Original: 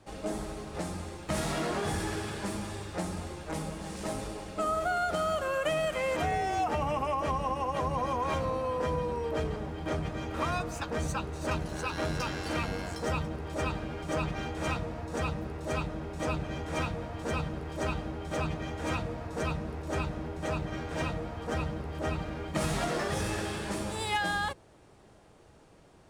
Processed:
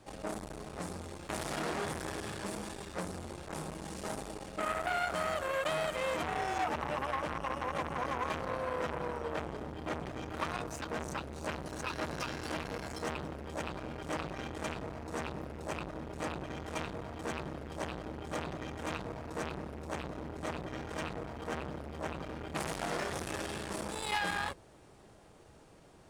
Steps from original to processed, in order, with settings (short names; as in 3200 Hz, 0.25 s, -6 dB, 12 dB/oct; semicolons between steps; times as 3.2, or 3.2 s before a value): high shelf 7600 Hz +3.5 dB; notches 50/100 Hz; core saturation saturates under 1600 Hz